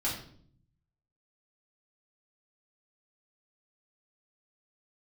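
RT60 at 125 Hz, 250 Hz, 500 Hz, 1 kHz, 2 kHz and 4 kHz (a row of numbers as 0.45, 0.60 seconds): 1.2, 0.95, 0.65, 0.50, 0.45, 0.45 seconds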